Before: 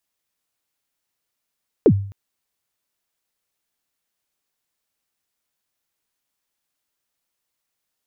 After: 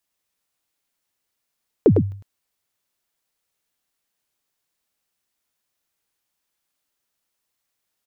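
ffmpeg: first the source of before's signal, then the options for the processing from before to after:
-f lavfi -i "aevalsrc='0.501*pow(10,-3*t/0.52)*sin(2*PI*(510*0.066/log(99/510)*(exp(log(99/510)*min(t,0.066)/0.066)-1)+99*max(t-0.066,0)))':duration=0.26:sample_rate=44100"
-af "aecho=1:1:104:0.562"

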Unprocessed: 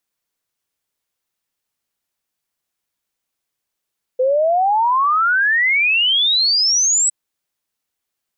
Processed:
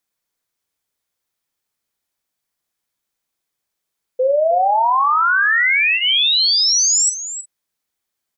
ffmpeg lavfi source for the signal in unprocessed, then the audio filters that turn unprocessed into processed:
-f lavfi -i "aevalsrc='0.237*clip(min(t,2.91-t)/0.01,0,1)*sin(2*PI*500*2.91/log(8000/500)*(exp(log(8000/500)*t/2.91)-1))':duration=2.91:sample_rate=44100"
-filter_complex "[0:a]bandreject=frequency=2800:width=17,asplit=2[link_01][link_02];[link_02]adelay=44,volume=-11.5dB[link_03];[link_01][link_03]amix=inputs=2:normalize=0,aecho=1:1:315:0.251"

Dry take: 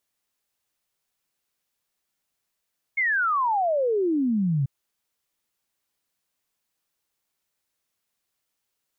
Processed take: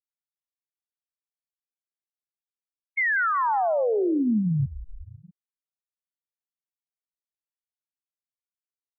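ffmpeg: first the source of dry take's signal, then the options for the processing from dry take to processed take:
-f lavfi -i "aevalsrc='0.1*clip(min(t,1.69-t)/0.01,0,1)*sin(2*PI*2200*1.69/log(130/2200)*(exp(log(130/2200)*t/1.69)-1))':duration=1.69:sample_rate=44100"
-filter_complex "[0:a]adynamicequalizer=threshold=0.0141:dfrequency=1200:dqfactor=7.8:tfrequency=1200:tqfactor=7.8:attack=5:release=100:ratio=0.375:range=2:mode=cutabove:tftype=bell,asplit=8[link_01][link_02][link_03][link_04][link_05][link_06][link_07][link_08];[link_02]adelay=185,afreqshift=-82,volume=-13.5dB[link_09];[link_03]adelay=370,afreqshift=-164,volume=-17.4dB[link_10];[link_04]adelay=555,afreqshift=-246,volume=-21.3dB[link_11];[link_05]adelay=740,afreqshift=-328,volume=-25.1dB[link_12];[link_06]adelay=925,afreqshift=-410,volume=-29dB[link_13];[link_07]adelay=1110,afreqshift=-492,volume=-32.9dB[link_14];[link_08]adelay=1295,afreqshift=-574,volume=-36.8dB[link_15];[link_01][link_09][link_10][link_11][link_12][link_13][link_14][link_15]amix=inputs=8:normalize=0,afftfilt=real='re*gte(hypot(re,im),0.0794)':imag='im*gte(hypot(re,im),0.0794)':win_size=1024:overlap=0.75"

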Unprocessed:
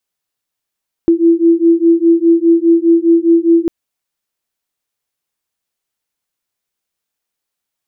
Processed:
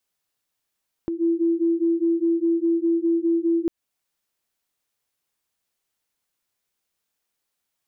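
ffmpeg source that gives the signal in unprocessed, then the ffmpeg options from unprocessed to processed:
-f lavfi -i "aevalsrc='0.316*(sin(2*PI*332*t)+sin(2*PI*336.9*t))':duration=2.6:sample_rate=44100"
-af "acompressor=threshold=-15dB:ratio=6,alimiter=limit=-16.5dB:level=0:latency=1:release=381"

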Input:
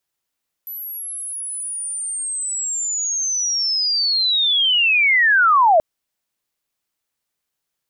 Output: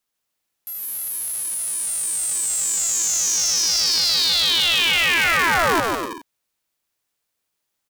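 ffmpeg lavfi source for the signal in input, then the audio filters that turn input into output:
-f lavfi -i "aevalsrc='pow(10,(-28+18.5*t/5.13)/20)*sin(2*PI*(12000*t-11400*t*t/(2*5.13)))':duration=5.13:sample_rate=44100"
-filter_complex "[0:a]acompressor=threshold=-19dB:ratio=6,asplit=2[link_01][link_02];[link_02]aecho=0:1:150|255|328.5|380|416:0.631|0.398|0.251|0.158|0.1[link_03];[link_01][link_03]amix=inputs=2:normalize=0,aeval=exprs='val(0)*sgn(sin(2*PI*340*n/s))':channel_layout=same"

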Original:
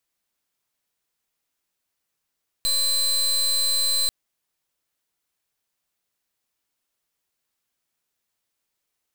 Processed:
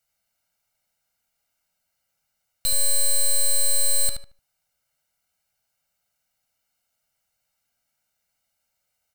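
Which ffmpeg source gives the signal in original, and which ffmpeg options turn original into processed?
-f lavfi -i "aevalsrc='0.0841*(2*lt(mod(4060*t,1),0.29)-1)':duration=1.44:sample_rate=44100"
-filter_complex "[0:a]bandreject=frequency=3500:width=13,aecho=1:1:1.4:0.86,asplit=2[link_01][link_02];[link_02]adelay=75,lowpass=frequency=3100:poles=1,volume=-4dB,asplit=2[link_03][link_04];[link_04]adelay=75,lowpass=frequency=3100:poles=1,volume=0.27,asplit=2[link_05][link_06];[link_06]adelay=75,lowpass=frequency=3100:poles=1,volume=0.27,asplit=2[link_07][link_08];[link_08]adelay=75,lowpass=frequency=3100:poles=1,volume=0.27[link_09];[link_01][link_03][link_05][link_07][link_09]amix=inputs=5:normalize=0"

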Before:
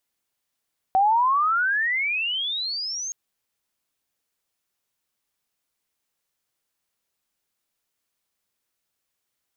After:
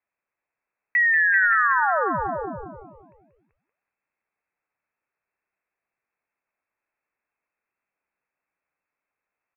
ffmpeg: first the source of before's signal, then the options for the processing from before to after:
-f lavfi -i "aevalsrc='pow(10,(-15-13*t/2.17)/20)*sin(2*PI*750*2.17/log(6600/750)*(exp(log(6600/750)*t/2.17)-1))':duration=2.17:sample_rate=44100"
-filter_complex "[0:a]asplit=2[link_01][link_02];[link_02]aecho=0:1:387:0.562[link_03];[link_01][link_03]amix=inputs=2:normalize=0,lowpass=frequency=2300:width_type=q:width=0.5098,lowpass=frequency=2300:width_type=q:width=0.6013,lowpass=frequency=2300:width_type=q:width=0.9,lowpass=frequency=2300:width_type=q:width=2.563,afreqshift=-2700,asplit=2[link_04][link_05];[link_05]aecho=0:1:186|372|558|744|930:0.422|0.194|0.0892|0.041|0.0189[link_06];[link_04][link_06]amix=inputs=2:normalize=0"

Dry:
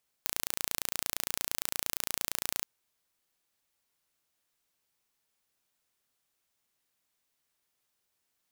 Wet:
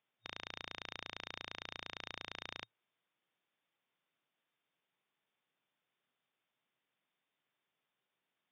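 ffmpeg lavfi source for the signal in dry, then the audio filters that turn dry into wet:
-f lavfi -i "aevalsrc='0.631*eq(mod(n,1537),0)':duration=2.39:sample_rate=44100"
-af "afftfilt=real='re*between(b*sr/4096,110,3700)':imag='im*between(b*sr/4096,110,3700)':win_size=4096:overlap=0.75,aeval=exprs='(tanh(14.1*val(0)+0.35)-tanh(0.35))/14.1':channel_layout=same"

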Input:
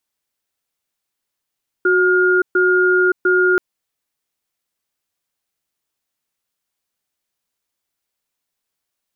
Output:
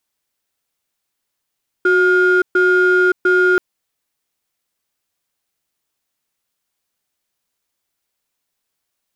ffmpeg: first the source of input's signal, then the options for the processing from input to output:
-f lavfi -i "aevalsrc='0.2*(sin(2*PI*367*t)+sin(2*PI*1420*t))*clip(min(mod(t,0.7),0.57-mod(t,0.7))/0.005,0,1)':duration=1.73:sample_rate=44100"
-filter_complex "[0:a]asplit=2[link_01][link_02];[link_02]asoftclip=type=hard:threshold=-22dB,volume=-7dB[link_03];[link_01][link_03]amix=inputs=2:normalize=0"

